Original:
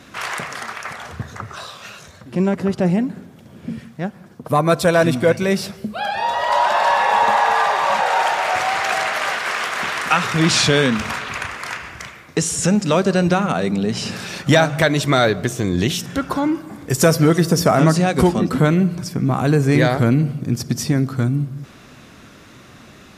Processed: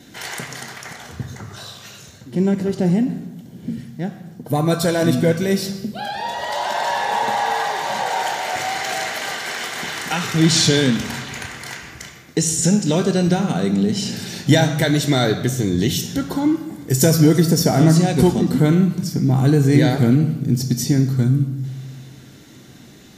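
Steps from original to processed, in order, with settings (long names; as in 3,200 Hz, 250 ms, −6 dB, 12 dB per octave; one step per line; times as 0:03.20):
high-shelf EQ 2,100 Hz +10.5 dB
convolution reverb RT60 1.1 s, pre-delay 3 ms, DRR 7.5 dB
level −4.5 dB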